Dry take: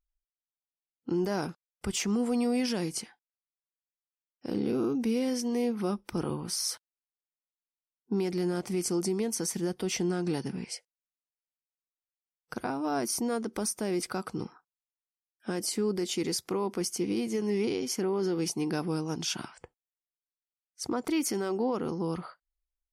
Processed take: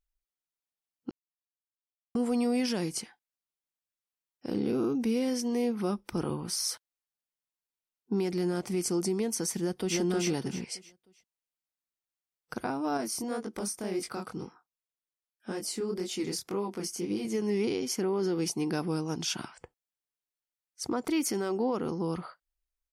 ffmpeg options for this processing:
ffmpeg -i in.wav -filter_complex "[0:a]asplit=2[link_01][link_02];[link_02]afade=type=in:start_time=9.59:duration=0.01,afade=type=out:start_time=9.99:duration=0.01,aecho=0:1:310|620|930|1240:0.841395|0.252419|0.0757256|0.0227177[link_03];[link_01][link_03]amix=inputs=2:normalize=0,asettb=1/sr,asplit=3[link_04][link_05][link_06];[link_04]atrim=end=12.974[link_07];[link_05]atrim=start=12.97:end=17.25,asetpts=PTS-STARTPTS,afade=type=in:duration=0.004:curve=qsin,afade=type=out:start_time=4.276:duration=0.004:curve=qsin,flanger=delay=19:depth=7.9:speed=1.9[link_08];[link_06]atrim=start=17.246[link_09];[link_07][link_08]acrossfade=duration=0.004:curve1=hsin:curve2=qsin[link_10];[link_10][link_09]acrossfade=duration=0.004:curve1=qsin:curve2=hsin,asplit=3[link_11][link_12][link_13];[link_11]atrim=end=1.11,asetpts=PTS-STARTPTS,afade=type=out:start_time=1.106:duration=0.004:curve=hsin[link_14];[link_12]atrim=start=1.11:end=2.15,asetpts=PTS-STARTPTS,volume=0[link_15];[link_13]atrim=start=2.15,asetpts=PTS-STARTPTS,afade=type=in:duration=0.004:curve=hsin[link_16];[link_14][link_15][link_16]concat=n=3:v=0:a=1" out.wav

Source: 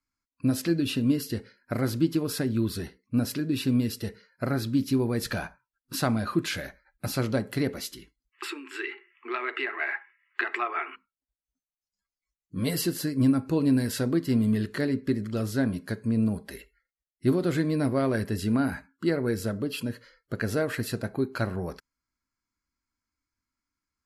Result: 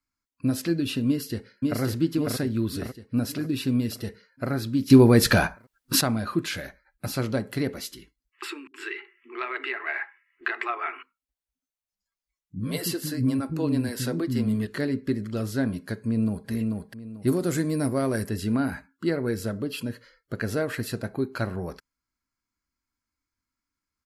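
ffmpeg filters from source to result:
ffmpeg -i in.wav -filter_complex "[0:a]asplit=2[link_01][link_02];[link_02]afade=type=in:start_time=1.07:duration=0.01,afade=type=out:start_time=1.81:duration=0.01,aecho=0:1:550|1100|1650|2200|2750|3300|3850:0.794328|0.397164|0.198582|0.099291|0.0496455|0.0248228|0.0124114[link_03];[link_01][link_03]amix=inputs=2:normalize=0,asettb=1/sr,asplit=3[link_04][link_05][link_06];[link_04]atrim=end=8.674[link_07];[link_05]atrim=start=8.67:end=14.67,asetpts=PTS-STARTPTS,afade=type=in:duration=0.004:curve=qsin,afade=type=out:start_time=5.996:duration=0.004:curve=qsin,acrossover=split=270[link_08][link_09];[link_09]adelay=70[link_10];[link_08][link_10]amix=inputs=2:normalize=0,atrim=end_sample=264600[link_11];[link_06]atrim=start=14.666[link_12];[link_07][link_11]acrossfade=duration=0.004:curve1=hsin:curve2=qsin[link_13];[link_13][link_12]acrossfade=duration=0.004:curve1=qsin:curve2=hsin,asplit=2[link_14][link_15];[link_15]afade=type=in:start_time=16:duration=0.01,afade=type=out:start_time=16.49:duration=0.01,aecho=0:1:440|880|1320|1760:0.707946|0.176986|0.0442466|0.0110617[link_16];[link_14][link_16]amix=inputs=2:normalize=0,asettb=1/sr,asplit=3[link_17][link_18][link_19];[link_17]atrim=end=17.274[link_20];[link_18]atrim=start=17.27:end=18.29,asetpts=PTS-STARTPTS,afade=type=in:duration=0.004:curve=qsin,afade=type=out:start_time=1.016:duration=0.004:curve=qsin,highshelf=frequency=5000:width_type=q:width=1.5:gain=9[link_21];[link_19]atrim=start=18.286[link_22];[link_20][link_21]acrossfade=duration=0.004:curve1=hsin:curve2=qsin[link_23];[link_23][link_22]acrossfade=duration=0.004:curve1=qsin:curve2=hsin,asplit=3[link_24][link_25][link_26];[link_24]atrim=end=4.902[link_27];[link_25]atrim=start=4.898:end=6.012,asetpts=PTS-STARTPTS,volume=11.5dB[link_28];[link_26]atrim=start=6.008[link_29];[link_27][link_28]acrossfade=duration=0.004:curve1=hsin:curve2=hsin[link_30];[link_30][link_29]acrossfade=duration=0.004:curve1=hsin:curve2=hsin" out.wav

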